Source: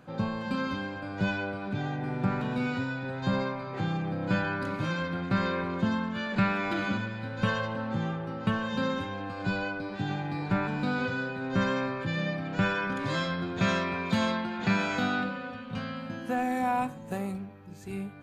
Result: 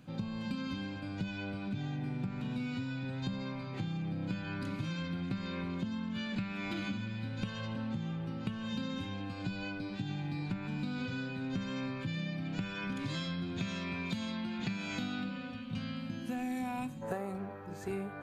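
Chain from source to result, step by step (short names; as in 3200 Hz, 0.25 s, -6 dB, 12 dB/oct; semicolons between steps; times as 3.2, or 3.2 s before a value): band shelf 820 Hz -9.5 dB 2.6 oct, from 17.01 s +8.5 dB; compressor 12:1, threshold -33 dBFS, peak gain reduction 12.5 dB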